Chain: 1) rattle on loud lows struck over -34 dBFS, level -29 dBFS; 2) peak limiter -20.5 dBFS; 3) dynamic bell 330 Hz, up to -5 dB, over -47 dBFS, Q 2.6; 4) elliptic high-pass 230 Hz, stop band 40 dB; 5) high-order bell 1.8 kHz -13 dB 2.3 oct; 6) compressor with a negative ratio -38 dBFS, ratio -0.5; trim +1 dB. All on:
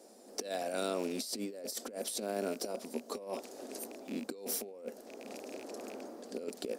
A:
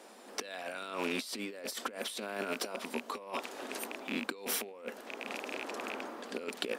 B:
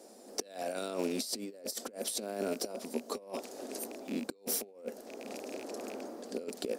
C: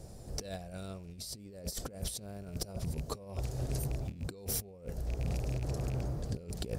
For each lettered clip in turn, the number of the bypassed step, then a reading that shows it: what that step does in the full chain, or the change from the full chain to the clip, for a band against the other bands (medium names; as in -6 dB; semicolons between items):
5, 2 kHz band +11.0 dB; 2, crest factor change +2.0 dB; 4, 125 Hz band +23.5 dB